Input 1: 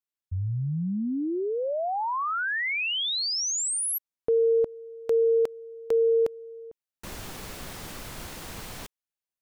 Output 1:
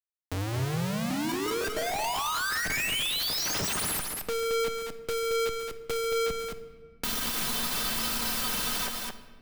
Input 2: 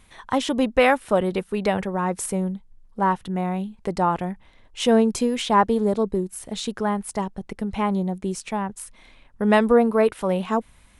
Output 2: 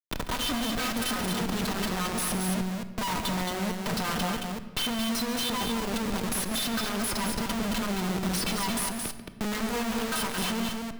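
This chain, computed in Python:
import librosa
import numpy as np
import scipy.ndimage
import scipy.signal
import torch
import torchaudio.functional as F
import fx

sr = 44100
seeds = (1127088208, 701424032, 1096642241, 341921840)

y = fx.high_shelf(x, sr, hz=2800.0, db=12.0)
y = fx.leveller(y, sr, passes=5)
y = fx.level_steps(y, sr, step_db=19)
y = fx.fixed_phaser(y, sr, hz=2100.0, stages=6)
y = fx.stiff_resonator(y, sr, f0_hz=230.0, decay_s=0.21, stiffness=0.008)
y = fx.schmitt(y, sr, flips_db=-46.0)
y = fx.echo_multitap(y, sr, ms=(140, 221), db=(-13.5, -5.5))
y = fx.room_shoebox(y, sr, seeds[0], volume_m3=910.0, walls='mixed', distance_m=0.47)
y = fx.band_squash(y, sr, depth_pct=40)
y = y * librosa.db_to_amplitude(4.0)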